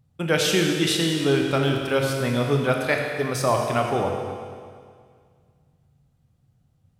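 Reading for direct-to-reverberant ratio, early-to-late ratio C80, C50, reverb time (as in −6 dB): 1.5 dB, 4.0 dB, 3.0 dB, 2.0 s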